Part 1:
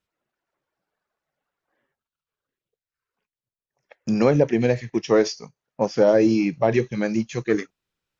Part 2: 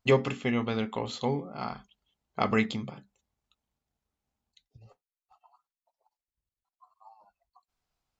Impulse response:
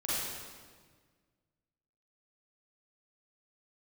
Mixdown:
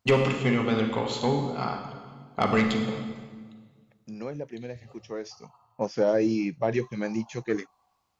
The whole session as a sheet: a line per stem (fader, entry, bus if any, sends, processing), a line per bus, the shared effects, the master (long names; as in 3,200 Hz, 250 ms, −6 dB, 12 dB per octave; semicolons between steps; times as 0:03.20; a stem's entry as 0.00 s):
0:05.23 −18 dB → 0:05.46 −6.5 dB, 0.00 s, no send, no processing
+2.5 dB, 0.00 s, send −8.5 dB, high-pass filter 63 Hz; soft clipping −17.5 dBFS, distortion −14 dB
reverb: on, RT60 1.6 s, pre-delay 36 ms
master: no processing